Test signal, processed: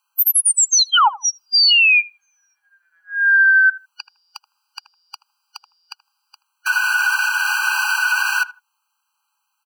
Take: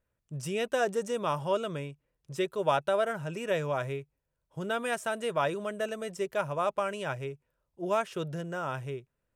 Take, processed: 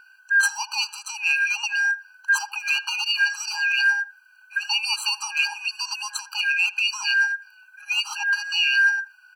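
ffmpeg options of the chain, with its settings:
ffmpeg -i in.wav -filter_complex "[0:a]afftfilt=real='real(if(lt(b,272),68*(eq(floor(b/68),0)*2+eq(floor(b/68),1)*0+eq(floor(b/68),2)*3+eq(floor(b/68),3)*1)+mod(b,68),b),0)':imag='imag(if(lt(b,272),68*(eq(floor(b/68),0)*2+eq(floor(b/68),1)*0+eq(floor(b/68),2)*3+eq(floor(b/68),3)*1)+mod(b,68),b),0)':win_size=2048:overlap=0.75,equalizer=frequency=630:width=0.34:gain=12,acontrast=68,aeval=exprs='clip(val(0),-1,0.316)':channel_layout=same,acompressor=threshold=-26dB:ratio=12,asplit=2[link_01][link_02];[link_02]adelay=79,lowpass=frequency=1400:poles=1,volume=-16.5dB,asplit=2[link_03][link_04];[link_04]adelay=79,lowpass=frequency=1400:poles=1,volume=0.22[link_05];[link_03][link_05]amix=inputs=2:normalize=0[link_06];[link_01][link_06]amix=inputs=2:normalize=0,alimiter=level_in=21.5dB:limit=-1dB:release=50:level=0:latency=1,afftfilt=real='re*eq(mod(floor(b*sr/1024/800),2),1)':imag='im*eq(mod(floor(b*sr/1024/800),2),1)':win_size=1024:overlap=0.75,volume=-6dB" out.wav

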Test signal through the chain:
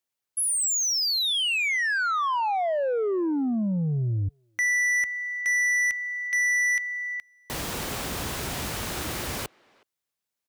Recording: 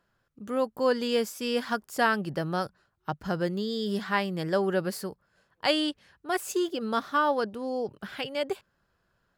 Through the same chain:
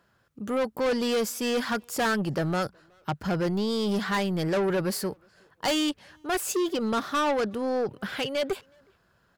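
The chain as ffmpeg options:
ffmpeg -i in.wav -filter_complex "[0:a]highpass=50,asoftclip=type=tanh:threshold=-29dB,asplit=2[link_01][link_02];[link_02]adelay=370,highpass=300,lowpass=3400,asoftclip=type=hard:threshold=-39dB,volume=-25dB[link_03];[link_01][link_03]amix=inputs=2:normalize=0,volume=7dB" out.wav

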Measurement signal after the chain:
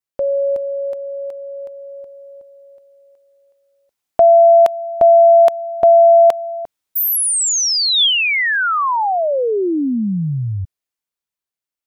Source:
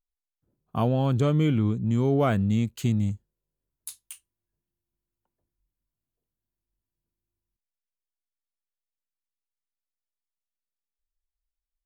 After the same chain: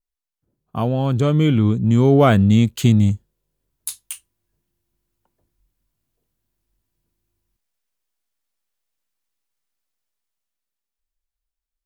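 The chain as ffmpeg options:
ffmpeg -i in.wav -af "dynaudnorm=framelen=100:gausssize=31:maxgain=10dB,adynamicequalizer=threshold=0.00708:dfrequency=3400:dqfactor=5.4:tfrequency=3400:tqfactor=5.4:attack=5:release=100:ratio=0.375:range=2.5:mode=boostabove:tftype=bell,volume=2dB" out.wav

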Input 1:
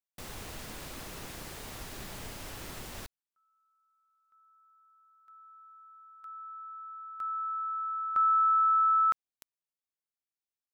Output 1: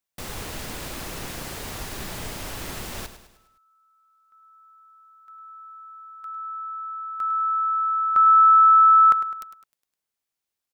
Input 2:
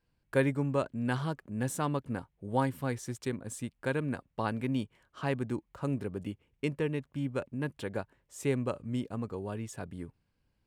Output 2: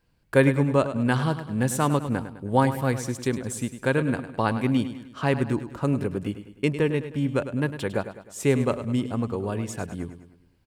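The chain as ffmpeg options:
ffmpeg -i in.wav -af "aecho=1:1:103|206|309|412|515:0.266|0.128|0.0613|0.0294|0.0141,volume=8.5dB" out.wav

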